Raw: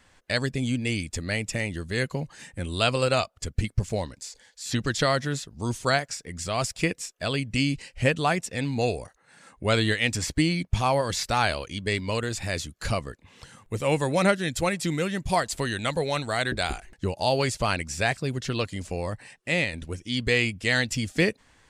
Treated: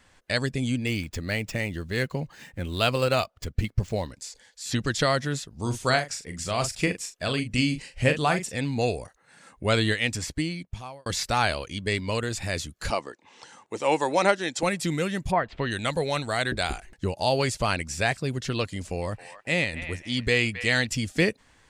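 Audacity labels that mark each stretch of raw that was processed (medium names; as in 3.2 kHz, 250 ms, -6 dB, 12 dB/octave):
0.860000	4.120000	median filter over 5 samples
5.500000	8.570000	doubling 40 ms -8.5 dB
9.870000	11.060000	fade out
12.900000	14.630000	cabinet simulation 300–8500 Hz, peaks and dips at 330 Hz +4 dB, 870 Hz +9 dB, 5.8 kHz +4 dB
15.300000	15.700000	low-pass 1.8 kHz -> 4.3 kHz 24 dB/octave
18.750000	20.870000	feedback echo behind a band-pass 269 ms, feedback 34%, band-pass 1.5 kHz, level -9.5 dB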